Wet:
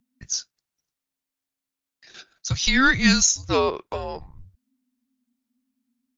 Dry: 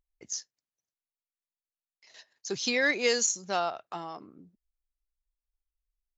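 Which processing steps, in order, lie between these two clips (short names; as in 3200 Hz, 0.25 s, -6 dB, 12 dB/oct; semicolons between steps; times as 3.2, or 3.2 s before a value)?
frequency shift -270 Hz; gain +8.5 dB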